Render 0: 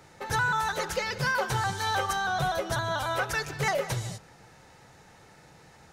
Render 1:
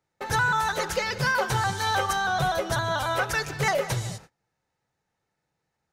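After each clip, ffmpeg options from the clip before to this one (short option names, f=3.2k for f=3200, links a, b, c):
-af "agate=range=-29dB:threshold=-47dB:ratio=16:detection=peak,volume=3dB"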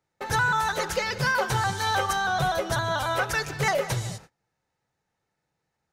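-af anull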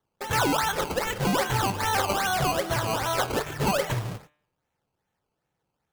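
-af "acrusher=samples=17:mix=1:aa=0.000001:lfo=1:lforange=17:lforate=2.5,bandreject=f=149.9:t=h:w=4,bandreject=f=299.8:t=h:w=4,bandreject=f=449.7:t=h:w=4,bandreject=f=599.6:t=h:w=4,bandreject=f=749.5:t=h:w=4,bandreject=f=899.4:t=h:w=4,bandreject=f=1.0493k:t=h:w=4,bandreject=f=1.1992k:t=h:w=4,bandreject=f=1.3491k:t=h:w=4,bandreject=f=1.499k:t=h:w=4,bandreject=f=1.6489k:t=h:w=4,bandreject=f=1.7988k:t=h:w=4,bandreject=f=1.9487k:t=h:w=4,bandreject=f=2.0986k:t=h:w=4,bandreject=f=2.2485k:t=h:w=4,bandreject=f=2.3984k:t=h:w=4,bandreject=f=2.5483k:t=h:w=4,bandreject=f=2.6982k:t=h:w=4,bandreject=f=2.8481k:t=h:w=4,bandreject=f=2.998k:t=h:w=4,bandreject=f=3.1479k:t=h:w=4,bandreject=f=3.2978k:t=h:w=4,bandreject=f=3.4477k:t=h:w=4,bandreject=f=3.5976k:t=h:w=4,bandreject=f=3.7475k:t=h:w=4,bandreject=f=3.8974k:t=h:w=4"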